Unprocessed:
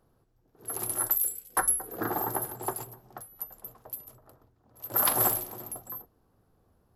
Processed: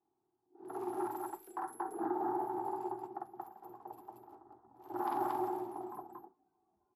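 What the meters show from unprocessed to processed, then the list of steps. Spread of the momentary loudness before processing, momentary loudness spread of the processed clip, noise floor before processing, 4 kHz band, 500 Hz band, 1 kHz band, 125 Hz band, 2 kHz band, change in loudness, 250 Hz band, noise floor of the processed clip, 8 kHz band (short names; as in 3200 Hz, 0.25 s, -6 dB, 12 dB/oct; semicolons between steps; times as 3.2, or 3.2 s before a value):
18 LU, 19 LU, -69 dBFS, under -20 dB, -1.5 dB, -1.5 dB, -16.0 dB, -15.0 dB, -11.0 dB, +0.5 dB, -82 dBFS, -30.5 dB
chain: double band-pass 540 Hz, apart 1.2 oct; in parallel at -2.5 dB: compressor, threshold -49 dBFS, peak gain reduction 17.5 dB; on the sum: limiter -32 dBFS, peak gain reduction 10 dB; loudspeakers at several distances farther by 17 m 0 dB, 79 m 0 dB; spectral noise reduction 13 dB; gain +2 dB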